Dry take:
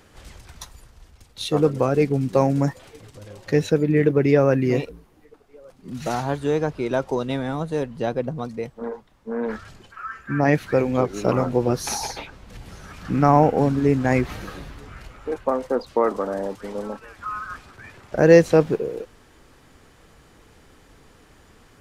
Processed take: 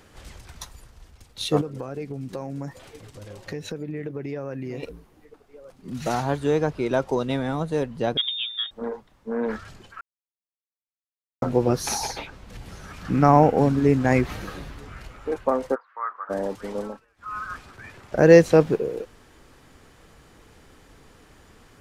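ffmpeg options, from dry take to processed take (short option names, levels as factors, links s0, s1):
-filter_complex "[0:a]asettb=1/sr,asplit=3[s0][s1][s2];[s0]atrim=end=1.614[s3];[s1]atrim=start=1.61:end=4.83,asetpts=PTS-STARTPTS,afade=t=in:d=0.004:c=qsin,afade=t=out:st=3.216:d=0.004:c=qsin,acompressor=threshold=0.0282:ratio=4:attack=3.2:release=140:knee=1:detection=peak[s4];[s2]atrim=start=4.826[s5];[s3][s4]acrossfade=d=0.004:c1=hsin:c2=qsin[s6];[s6][s5]acrossfade=d=0.004:c1=qsin:c2=hsin,asettb=1/sr,asplit=3[s7][s8][s9];[s7]atrim=end=8.174[s10];[s8]atrim=start=8.17:end=8.71,asetpts=PTS-STARTPTS,afade=t=in:d=0.004:c=qsin,afade=t=out:st=0.536:d=0.004:c=qsin,lowpass=f=3200:t=q:w=0.5098,lowpass=f=3200:t=q:w=0.6013,lowpass=f=3200:t=q:w=0.9,lowpass=f=3200:t=q:w=2.563,afreqshift=-3800[s11];[s9]atrim=start=8.706[s12];[s10][s11]acrossfade=d=0.004:c1=hsin:c2=qsin[s13];[s13][s12]acrossfade=d=0.004:c1=qsin:c2=hsin,asplit=3[s14][s15][s16];[s14]afade=t=out:st=15.74:d=0.02[s17];[s15]asuperpass=centerf=1400:order=4:qfactor=2.1,afade=t=in:st=15.74:d=0.02,afade=t=out:st=16.29:d=0.02[s18];[s16]afade=t=in:st=16.29:d=0.02[s19];[s17][s18][s19]amix=inputs=3:normalize=0,asplit=5[s20][s21][s22][s23][s24];[s20]atrim=end=10.01,asetpts=PTS-STARTPTS,afade=t=out:st=10.006:d=0.004:c=hsin[s25];[s21]atrim=start=10.01:end=11.42,asetpts=PTS-STARTPTS,volume=0[s26];[s22]atrim=start=11.42:end=17.05,asetpts=PTS-STARTPTS,afade=t=in:d=0.004:c=hsin,afade=t=out:st=5.39:d=0.24:silence=0.0794328[s27];[s23]atrim=start=17.05:end=17.16,asetpts=PTS-STARTPTS,volume=0.0794[s28];[s24]atrim=start=17.16,asetpts=PTS-STARTPTS,afade=t=in:d=0.24:silence=0.0794328[s29];[s25][s26][s27][s28][s29]concat=n=5:v=0:a=1"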